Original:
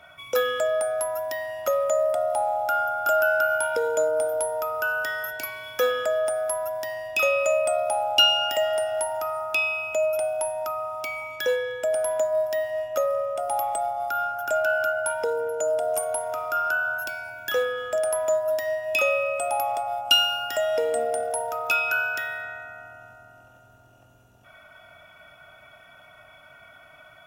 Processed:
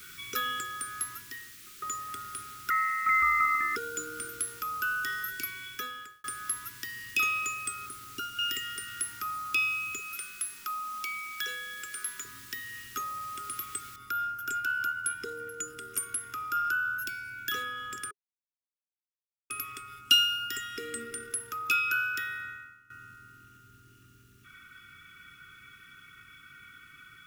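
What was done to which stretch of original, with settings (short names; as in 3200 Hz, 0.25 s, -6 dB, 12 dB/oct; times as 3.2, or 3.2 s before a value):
0.99–1.82 studio fade out
2.7–3.76 inverted band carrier 2700 Hz
5.43–6.24 fade out
7.86–8.39 EQ curve 1200 Hz 0 dB, 2600 Hz -26 dB, 9100 Hz -9 dB
9.99–12.25 HPF 550 Hz
13.96 noise floor step -49 dB -68 dB
18.11–19.5 mute
22.49–22.9 fade out quadratic, to -16 dB
whole clip: Chebyshev band-stop 410–1200 Hz, order 4; dynamic EQ 1900 Hz, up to -4 dB, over -39 dBFS, Q 0.84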